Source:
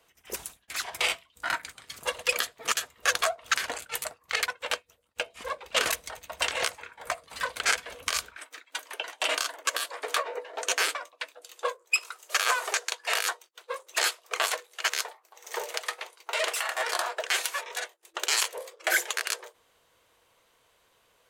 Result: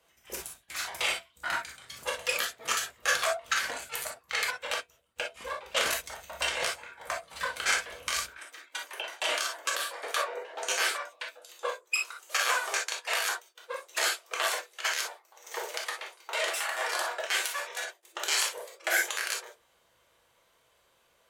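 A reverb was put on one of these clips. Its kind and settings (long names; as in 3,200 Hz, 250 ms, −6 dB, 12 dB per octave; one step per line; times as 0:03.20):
reverb whose tail is shaped and stops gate 80 ms flat, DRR −0.5 dB
level −4.5 dB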